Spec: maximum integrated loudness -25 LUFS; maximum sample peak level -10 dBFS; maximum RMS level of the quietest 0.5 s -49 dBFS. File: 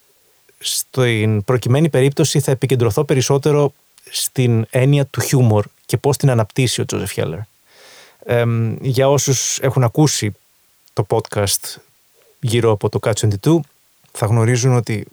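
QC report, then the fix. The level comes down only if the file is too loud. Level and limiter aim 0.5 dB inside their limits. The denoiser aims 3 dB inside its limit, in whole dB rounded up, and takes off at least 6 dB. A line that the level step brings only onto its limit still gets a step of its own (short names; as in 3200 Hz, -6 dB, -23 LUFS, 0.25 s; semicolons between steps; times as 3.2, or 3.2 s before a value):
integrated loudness -17.0 LUFS: fail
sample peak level -4.0 dBFS: fail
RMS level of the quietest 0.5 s -56 dBFS: OK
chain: gain -8.5 dB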